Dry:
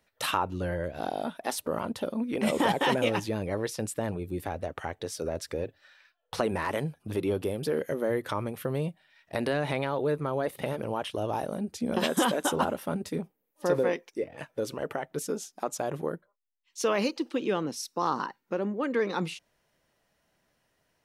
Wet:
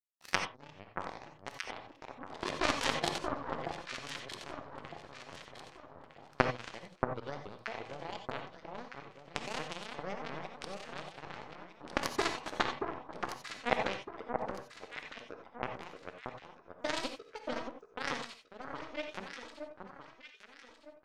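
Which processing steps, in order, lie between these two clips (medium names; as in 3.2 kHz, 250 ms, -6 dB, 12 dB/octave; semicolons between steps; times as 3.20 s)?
sawtooth pitch modulation +10 st, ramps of 355 ms; low-pass 5.7 kHz 24 dB/octave; power-law waveshaper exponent 3; echo whose repeats swap between lows and highs 629 ms, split 1.4 kHz, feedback 59%, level -4 dB; gated-style reverb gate 110 ms rising, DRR 6 dB; trim +7 dB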